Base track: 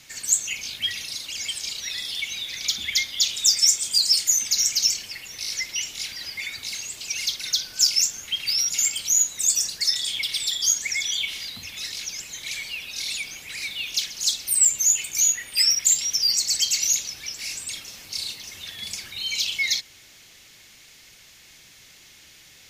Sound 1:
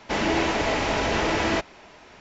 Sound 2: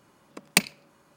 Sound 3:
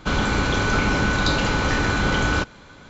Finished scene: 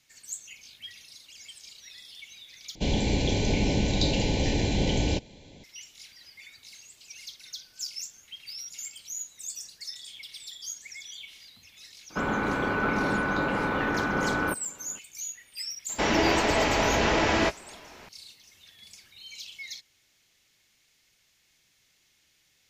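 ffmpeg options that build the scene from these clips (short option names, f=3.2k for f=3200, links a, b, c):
-filter_complex "[3:a]asplit=2[a][b];[0:a]volume=-17dB[c];[a]asuperstop=centerf=1300:order=4:qfactor=0.84[d];[b]acrossover=split=160 2300:gain=0.178 1 0.0708[e][f][g];[e][f][g]amix=inputs=3:normalize=0[h];[1:a]asplit=2[i][j];[j]adelay=17,volume=-13dB[k];[i][k]amix=inputs=2:normalize=0[l];[c]asplit=2[m][n];[m]atrim=end=2.754[o];[d]atrim=end=2.89,asetpts=PTS-STARTPTS,volume=-3dB[p];[n]atrim=start=5.636[q];[h]atrim=end=2.89,asetpts=PTS-STARTPTS,volume=-3.5dB,afade=t=in:d=0.004:c=hsin,afade=t=out:st=2.886:d=0.004:c=hsin,adelay=12100[r];[l]atrim=end=2.2,asetpts=PTS-STARTPTS,afade=t=in:d=0.004:c=hsin,afade=t=out:st=2.196:d=0.004:c=hsin,adelay=15890[s];[o][p]acrossfade=d=0.004:c1=hsin:c2=hsin[t];[t][q]acrossfade=d=0.004:c1=hsin:c2=hsin[u];[u][r][s]amix=inputs=3:normalize=0"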